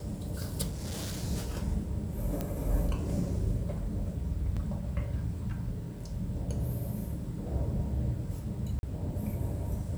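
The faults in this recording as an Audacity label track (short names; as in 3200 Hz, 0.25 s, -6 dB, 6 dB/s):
0.680000	1.190000	clipped -32.5 dBFS
2.410000	2.410000	pop -19 dBFS
4.560000	4.570000	gap 6.5 ms
8.790000	8.830000	gap 41 ms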